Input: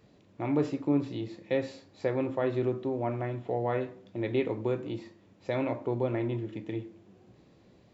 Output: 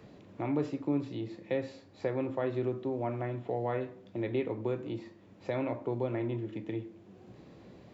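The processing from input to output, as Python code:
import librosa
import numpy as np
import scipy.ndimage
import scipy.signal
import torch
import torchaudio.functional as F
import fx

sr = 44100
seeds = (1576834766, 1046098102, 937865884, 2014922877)

y = fx.high_shelf(x, sr, hz=5000.0, db=-4.0)
y = fx.band_squash(y, sr, depth_pct=40)
y = y * 10.0 ** (-3.0 / 20.0)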